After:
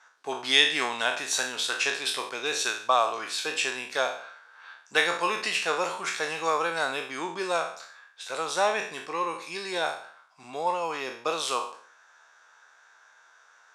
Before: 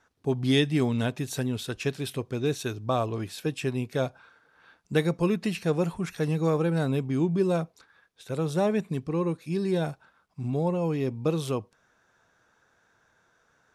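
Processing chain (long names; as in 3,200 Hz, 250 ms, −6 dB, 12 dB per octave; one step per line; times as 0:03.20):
peak hold with a decay on every bin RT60 0.52 s
Chebyshev band-pass filter 960–7,500 Hz, order 2
level +8.5 dB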